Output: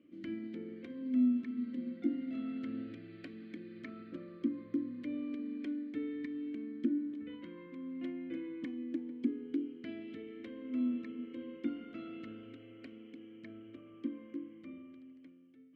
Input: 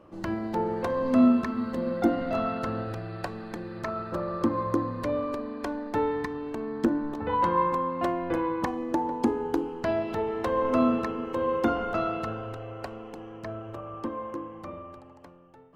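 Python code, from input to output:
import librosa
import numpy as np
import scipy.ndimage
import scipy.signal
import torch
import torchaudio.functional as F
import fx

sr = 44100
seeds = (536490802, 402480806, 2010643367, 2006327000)

y = fx.rider(x, sr, range_db=4, speed_s=0.5)
y = fx.vowel_filter(y, sr, vowel='i')
y = y * 10.0 ** (-1.0 / 20.0)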